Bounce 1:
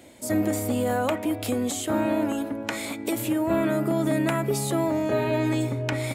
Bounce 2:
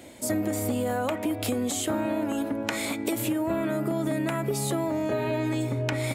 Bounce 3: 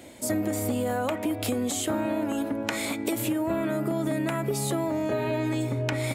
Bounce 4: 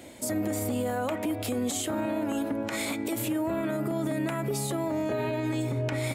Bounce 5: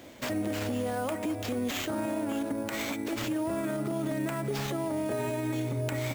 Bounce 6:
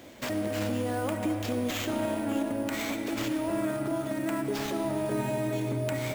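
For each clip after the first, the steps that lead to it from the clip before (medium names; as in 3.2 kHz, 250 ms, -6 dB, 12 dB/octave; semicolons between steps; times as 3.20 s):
compression, threshold -27 dBFS, peak gain reduction 8 dB; trim +3 dB
no audible change
peak limiter -21 dBFS, peak gain reduction 8.5 dB
sample-rate reducer 10 kHz, jitter 0%; trim -2 dB
algorithmic reverb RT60 3.9 s, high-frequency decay 0.5×, pre-delay 30 ms, DRR 6 dB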